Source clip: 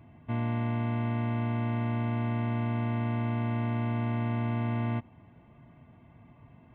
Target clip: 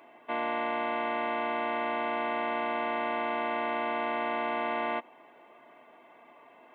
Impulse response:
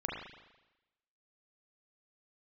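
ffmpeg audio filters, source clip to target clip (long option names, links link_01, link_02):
-af "highpass=frequency=400:width=0.5412,highpass=frequency=400:width=1.3066,volume=8.5dB"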